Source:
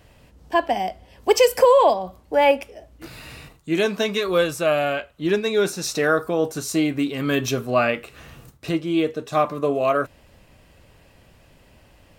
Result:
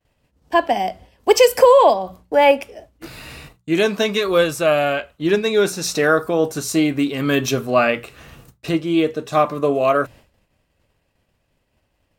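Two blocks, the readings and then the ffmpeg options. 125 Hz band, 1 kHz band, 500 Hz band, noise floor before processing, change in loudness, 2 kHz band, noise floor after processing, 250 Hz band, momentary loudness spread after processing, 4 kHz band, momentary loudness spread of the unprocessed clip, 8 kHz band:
+3.0 dB, +3.5 dB, +3.5 dB, −54 dBFS, +3.5 dB, +3.5 dB, −69 dBFS, +3.5 dB, 12 LU, +3.5 dB, 13 LU, +3.5 dB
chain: -af "agate=range=-33dB:threshold=-40dB:ratio=3:detection=peak,bandreject=frequency=60:width_type=h:width=6,bandreject=frequency=120:width_type=h:width=6,bandreject=frequency=180:width_type=h:width=6,volume=3.5dB"

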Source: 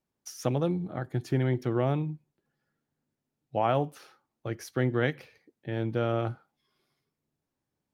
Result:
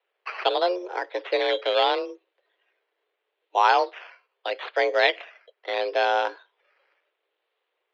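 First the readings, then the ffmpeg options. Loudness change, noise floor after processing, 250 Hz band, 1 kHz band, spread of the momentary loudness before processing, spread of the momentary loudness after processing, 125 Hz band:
+6.0 dB, −80 dBFS, −9.5 dB, +11.5 dB, 15 LU, 13 LU, below −40 dB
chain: -af "acrusher=samples=10:mix=1:aa=0.000001:lfo=1:lforange=6:lforate=0.77,crystalizer=i=6:c=0,highpass=frequency=230:width_type=q:width=0.5412,highpass=frequency=230:width_type=q:width=1.307,lowpass=frequency=3400:width_type=q:width=0.5176,lowpass=frequency=3400:width_type=q:width=0.7071,lowpass=frequency=3400:width_type=q:width=1.932,afreqshift=180,volume=6dB"

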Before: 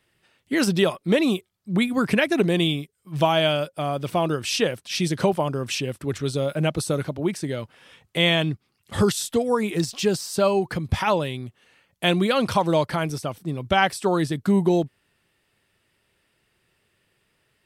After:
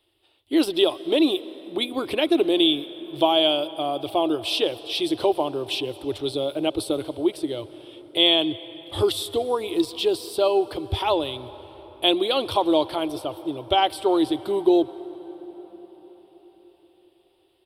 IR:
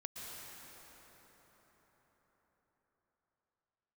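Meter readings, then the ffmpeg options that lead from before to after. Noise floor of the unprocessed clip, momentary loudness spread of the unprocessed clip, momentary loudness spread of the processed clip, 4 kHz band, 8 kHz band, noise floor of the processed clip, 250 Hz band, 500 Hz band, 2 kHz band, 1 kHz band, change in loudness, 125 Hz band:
−71 dBFS, 10 LU, 13 LU, +4.5 dB, −7.5 dB, −63 dBFS, −0.5 dB, +1.0 dB, −7.0 dB, 0.0 dB, 0.0 dB, −13.0 dB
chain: -filter_complex "[0:a]firequalizer=gain_entry='entry(100,0);entry(180,-25);entry(310,8);entry(480,0);entry(750,4);entry(1700,-12);entry(3400,9);entry(6400,-14);entry(9400,0)':delay=0.05:min_phase=1,asplit=2[link_01][link_02];[1:a]atrim=start_sample=2205[link_03];[link_02][link_03]afir=irnorm=-1:irlink=0,volume=-12.5dB[link_04];[link_01][link_04]amix=inputs=2:normalize=0,volume=-3dB"

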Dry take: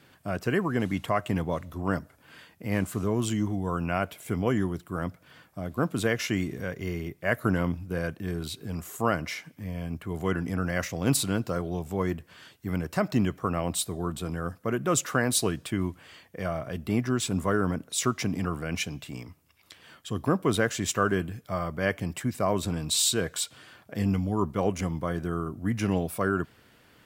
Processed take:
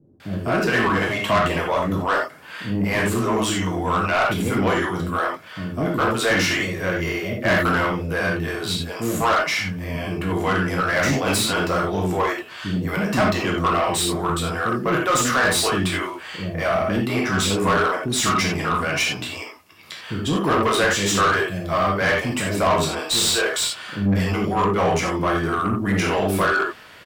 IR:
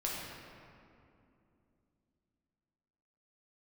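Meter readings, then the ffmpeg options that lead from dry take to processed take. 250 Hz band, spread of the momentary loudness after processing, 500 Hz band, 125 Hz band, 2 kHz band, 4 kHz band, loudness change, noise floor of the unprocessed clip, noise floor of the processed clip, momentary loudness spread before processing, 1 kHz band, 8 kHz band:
+5.5 dB, 8 LU, +8.0 dB, +4.5 dB, +12.5 dB, +10.5 dB, +8.0 dB, −60 dBFS, −41 dBFS, 9 LU, +12.0 dB, +5.5 dB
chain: -filter_complex "[0:a]lowshelf=frequency=120:gain=7,acrossover=split=370[link_01][link_02];[link_02]adelay=200[link_03];[link_01][link_03]amix=inputs=2:normalize=0[link_04];[1:a]atrim=start_sample=2205,atrim=end_sample=4410[link_05];[link_04][link_05]afir=irnorm=-1:irlink=0,asplit=2[link_06][link_07];[link_07]highpass=frequency=720:poles=1,volume=22dB,asoftclip=type=tanh:threshold=-10dB[link_08];[link_06][link_08]amix=inputs=2:normalize=0,lowpass=frequency=4600:poles=1,volume=-6dB"

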